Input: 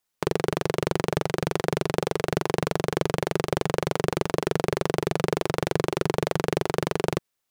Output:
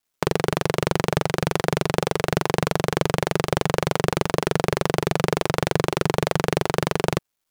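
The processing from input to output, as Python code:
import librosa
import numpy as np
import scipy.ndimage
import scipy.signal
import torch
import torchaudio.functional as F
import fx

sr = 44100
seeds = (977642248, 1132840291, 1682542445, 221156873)

y = fx.dynamic_eq(x, sr, hz=360.0, q=1.3, threshold_db=-37.0, ratio=4.0, max_db=-4)
y = fx.quant_dither(y, sr, seeds[0], bits=12, dither='none')
y = F.gain(torch.from_numpy(y), 5.0).numpy()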